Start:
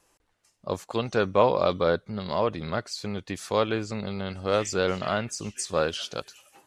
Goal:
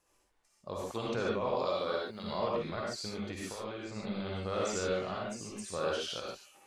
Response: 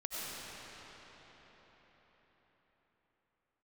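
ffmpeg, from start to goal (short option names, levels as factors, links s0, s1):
-filter_complex "[0:a]asettb=1/sr,asplit=3[s0][s1][s2];[s0]atrim=end=1.554[s3];[s1]atrim=start=1.55:end=2.24,asetpts=PTS-STARTPTS,afade=t=in:d=0.004:c=qsin,afade=t=out:st=0.686:d=0.004:c=qsin,aemphasis=mode=production:type=bsi[s4];[s2]atrim=start=2.236[s5];[s3][s4]acrossfade=d=0.004:c1=hsin:c2=qsin[s6];[s6][s5]acrossfade=d=0.004:c1=qsin:c2=hsin,asettb=1/sr,asplit=3[s7][s8][s9];[s7]atrim=end=4.884[s10];[s8]atrim=start=4.88:end=5.66,asetpts=PTS-STARTPTS,afade=t=in:d=0.004:c=qsin,afade=t=out:st=0.776:d=0.004:c=qsin,acrossover=split=210|990[s11][s12][s13];[s11]acompressor=threshold=0.01:ratio=4[s14];[s12]acompressor=threshold=0.0316:ratio=4[s15];[s13]acompressor=threshold=0.0126:ratio=4[s16];[s14][s15][s16]amix=inputs=3:normalize=0[s17];[s9]atrim=start=5.656[s18];[s10][s17]acrossfade=d=0.004:c1=hsin:c2=qsin[s19];[s19][s18]acrossfade=d=0.004:c1=qsin:c2=hsin,alimiter=limit=0.168:level=0:latency=1:release=64,asettb=1/sr,asplit=3[s20][s21][s22];[s20]atrim=end=3.494[s23];[s21]atrim=start=3.49:end=3.96,asetpts=PTS-STARTPTS,afade=t=in:d=0.004:c=qsin,afade=t=out:st=0.466:d=0.004:c=qsin,acompressor=threshold=0.0251:ratio=6[s24];[s22]atrim=start=3.956[s25];[s23][s24]acrossfade=d=0.004:c1=hsin:c2=qsin[s26];[s26][s25]acrossfade=d=0.004:c1=qsin:c2=hsin[s27];[1:a]atrim=start_sample=2205,afade=t=out:st=0.32:d=0.01,atrim=end_sample=14553,asetrate=79380,aresample=44100[s28];[s27][s28]afir=irnorm=-1:irlink=0"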